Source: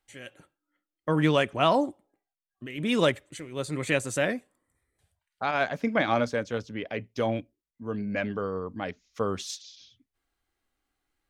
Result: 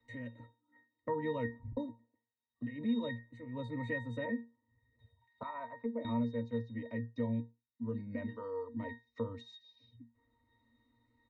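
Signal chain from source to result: 1.37 tape stop 0.40 s; comb 3.2 ms, depth 43%; 8.28–8.74 tilt +4.5 dB/oct; octave resonator A#, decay 0.23 s; 5.43–6.05 auto-wah 510–1300 Hz, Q 2.2, down, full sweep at -33 dBFS; three-band squash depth 70%; gain +4.5 dB

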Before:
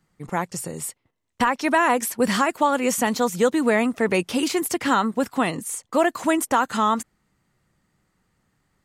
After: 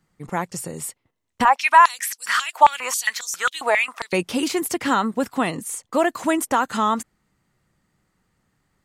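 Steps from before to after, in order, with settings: 1.45–4.13 stepped high-pass 7.4 Hz 780–5700 Hz

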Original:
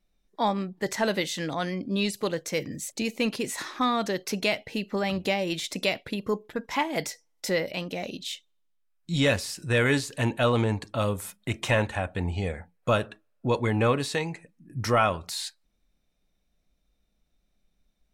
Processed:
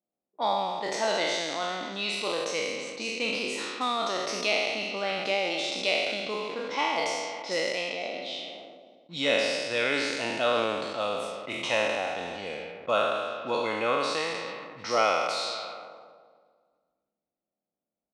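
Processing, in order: spectral trails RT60 1.84 s; in parallel at -11 dB: bit-crush 6-bit; on the sum: echo 0.54 s -19 dB; low-pass opened by the level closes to 740 Hz, open at -18.5 dBFS; speaker cabinet 400–7600 Hz, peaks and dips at 410 Hz -5 dB, 1000 Hz -3 dB, 1700 Hz -9 dB, 7200 Hz -8 dB; sustainer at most 34 dB/s; gain -4.5 dB

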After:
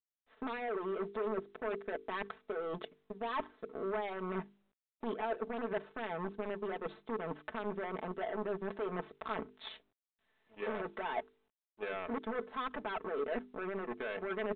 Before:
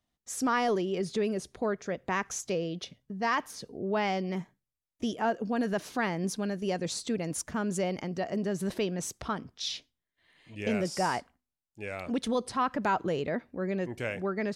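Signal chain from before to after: overloaded stage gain 28 dB; band shelf 720 Hz +15.5 dB 3 oct; limiter -17.5 dBFS, peak gain reduction 9.5 dB; power-law curve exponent 2; reverse; compressor 6:1, threshold -37 dBFS, peak gain reduction 14.5 dB; reverse; notches 50/100/150/200/250/300/350/400/450 Hz; comb 4.6 ms, depth 72%; gain +1 dB; µ-law 64 kbps 8000 Hz

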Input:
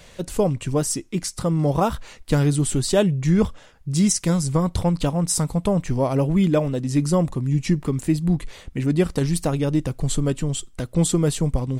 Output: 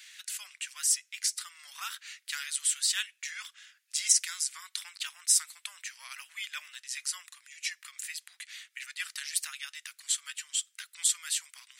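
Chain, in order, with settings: steep high-pass 1600 Hz 36 dB/oct

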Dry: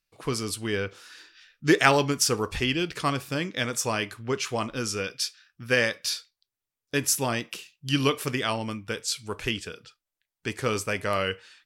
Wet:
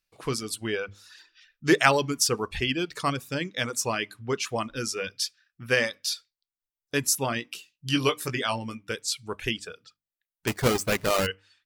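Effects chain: 10.47–11.27 half-waves squared off; notches 50/100/150/200/250/300 Hz; reverb removal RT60 0.96 s; 7.34–8.89 doubler 17 ms -8 dB

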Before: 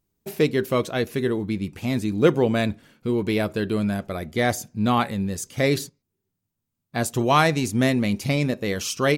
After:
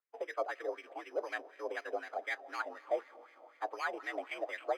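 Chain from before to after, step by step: limiter -14 dBFS, peak gain reduction 10.5 dB; time stretch by phase-locked vocoder 0.52×; mistuned SSB +66 Hz 280–2900 Hz; on a send at -16 dB: reverb RT60 3.8 s, pre-delay 0.115 s; on the sum: careless resampling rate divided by 8×, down none, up hold; wah 4 Hz 670–2100 Hz, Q 4.2; gain +1 dB

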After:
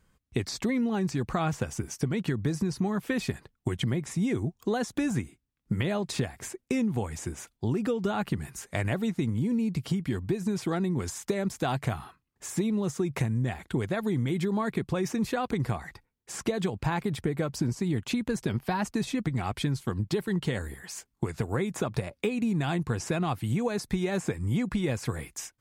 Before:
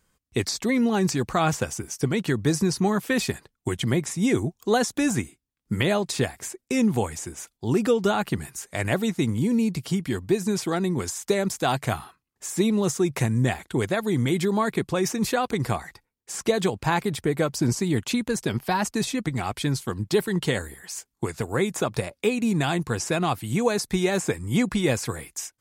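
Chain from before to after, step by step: tone controls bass +5 dB, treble -6 dB; compressor, threshold -25 dBFS, peak gain reduction 10.5 dB

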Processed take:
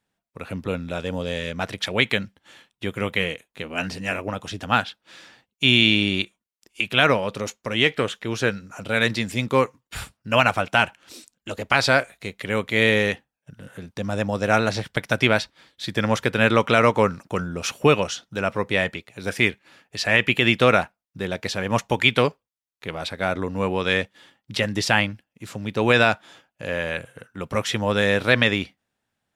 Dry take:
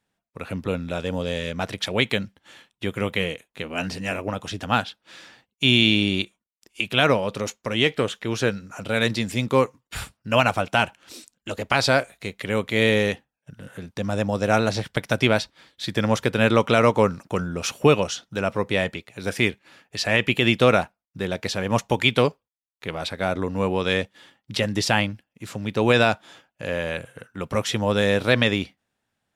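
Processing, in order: dynamic EQ 1800 Hz, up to +5 dB, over -33 dBFS, Q 0.94; gain -1 dB

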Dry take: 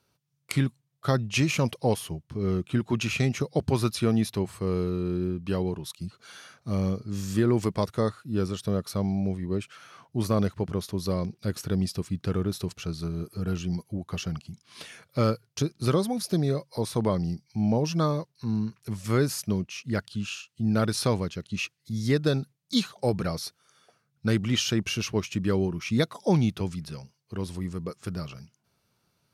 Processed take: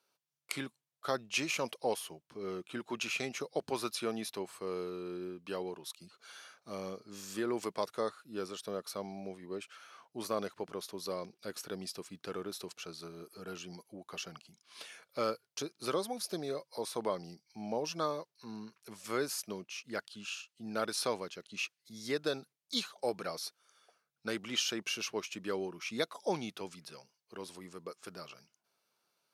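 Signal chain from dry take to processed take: HPF 430 Hz 12 dB/oct; notch 1900 Hz, Q 23; gain -5 dB

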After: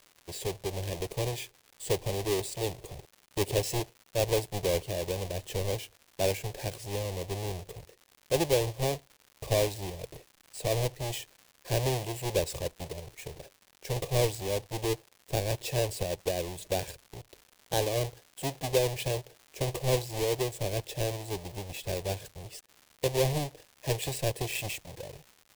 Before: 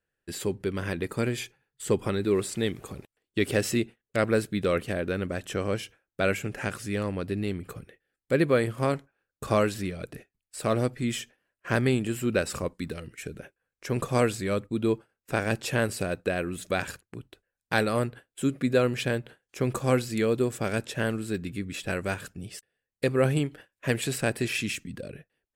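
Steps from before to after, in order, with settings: half-waves squared off; fixed phaser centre 560 Hz, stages 4; crackle 210/s -37 dBFS; gain -5 dB

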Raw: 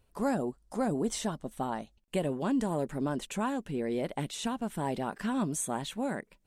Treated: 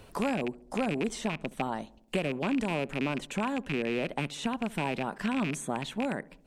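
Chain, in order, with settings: rattling part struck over -37 dBFS, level -24 dBFS; high shelf 7800 Hz -8.5 dB; darkening echo 69 ms, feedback 52%, low-pass 1000 Hz, level -20.5 dB; three-band squash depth 70%

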